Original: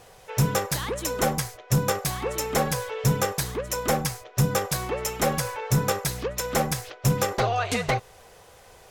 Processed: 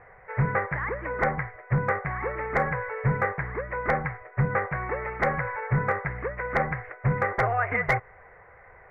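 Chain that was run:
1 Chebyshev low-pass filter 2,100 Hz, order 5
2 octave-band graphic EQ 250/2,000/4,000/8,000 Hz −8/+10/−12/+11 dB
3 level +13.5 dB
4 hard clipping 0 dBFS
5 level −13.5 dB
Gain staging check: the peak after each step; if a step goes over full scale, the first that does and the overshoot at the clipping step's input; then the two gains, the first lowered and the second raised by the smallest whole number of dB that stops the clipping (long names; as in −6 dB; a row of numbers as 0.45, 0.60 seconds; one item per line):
−13.5, −9.5, +4.0, 0.0, −13.5 dBFS
step 3, 4.0 dB
step 3 +9.5 dB, step 5 −9.5 dB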